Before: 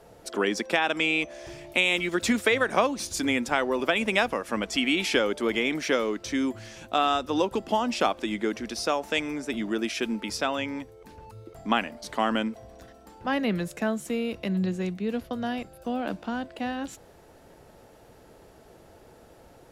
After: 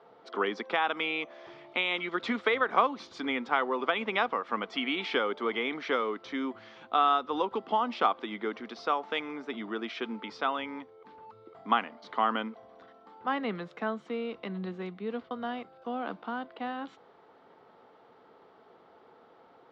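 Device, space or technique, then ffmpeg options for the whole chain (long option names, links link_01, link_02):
phone earpiece: -af "highpass=330,equalizer=frequency=330:width_type=q:width=4:gain=-6,equalizer=frequency=590:width_type=q:width=4:gain=-9,equalizer=frequency=1200:width_type=q:width=4:gain=5,equalizer=frequency=1700:width_type=q:width=4:gain=-6,equalizer=frequency=2600:width_type=q:width=4:gain=-9,lowpass=frequency=3300:width=0.5412,lowpass=frequency=3300:width=1.3066"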